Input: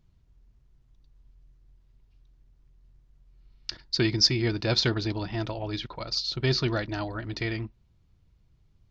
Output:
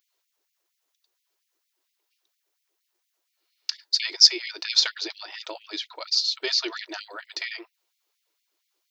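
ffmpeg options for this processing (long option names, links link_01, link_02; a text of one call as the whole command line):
ffmpeg -i in.wav -af "aemphasis=mode=production:type=75kf,afftfilt=real='re*gte(b*sr/1024,290*pow(2000/290,0.5+0.5*sin(2*PI*4.3*pts/sr)))':imag='im*gte(b*sr/1024,290*pow(2000/290,0.5+0.5*sin(2*PI*4.3*pts/sr)))':win_size=1024:overlap=0.75,volume=-1dB" out.wav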